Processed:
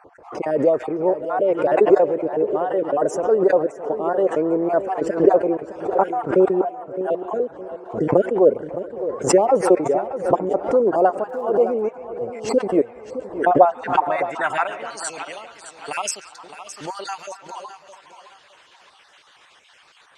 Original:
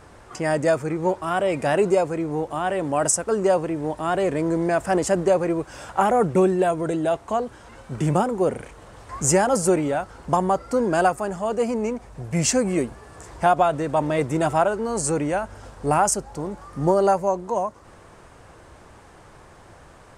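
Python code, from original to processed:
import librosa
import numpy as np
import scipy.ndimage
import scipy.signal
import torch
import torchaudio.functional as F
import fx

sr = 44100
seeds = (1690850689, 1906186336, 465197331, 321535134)

p1 = fx.spec_dropout(x, sr, seeds[0], share_pct=34)
p2 = fx.formant_cascade(p1, sr, vowel='a', at=(6.61, 7.01))
p3 = fx.rider(p2, sr, range_db=3, speed_s=2.0)
p4 = p2 + (p3 * librosa.db_to_amplitude(2.0))
p5 = fx.filter_sweep_bandpass(p4, sr, from_hz=460.0, to_hz=3300.0, start_s=13.48, end_s=14.96, q=2.0)
p6 = fx.echo_feedback(p5, sr, ms=614, feedback_pct=30, wet_db=-12.0)
p7 = fx.hpss(p6, sr, part='percussive', gain_db=5)
p8 = p7 + fx.echo_stepped(p7, sr, ms=137, hz=3000.0, octaves=-0.7, feedback_pct=70, wet_db=-9, dry=0)
p9 = fx.dmg_crackle(p8, sr, seeds[1], per_s=120.0, level_db=-44.0, at=(11.28, 11.81), fade=0.02)
p10 = fx.pre_swell(p9, sr, db_per_s=130.0)
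y = p10 * librosa.db_to_amplitude(-1.5)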